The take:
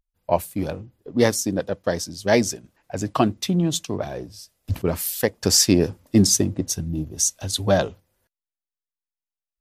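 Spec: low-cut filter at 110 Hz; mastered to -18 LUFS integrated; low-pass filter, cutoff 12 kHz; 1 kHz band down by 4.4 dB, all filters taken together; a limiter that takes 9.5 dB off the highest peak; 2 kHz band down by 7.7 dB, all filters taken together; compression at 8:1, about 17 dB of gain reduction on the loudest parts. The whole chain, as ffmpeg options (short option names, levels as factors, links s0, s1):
-af "highpass=110,lowpass=12000,equalizer=f=1000:t=o:g=-5,equalizer=f=2000:t=o:g=-8,acompressor=threshold=0.0316:ratio=8,volume=10,alimiter=limit=0.473:level=0:latency=1"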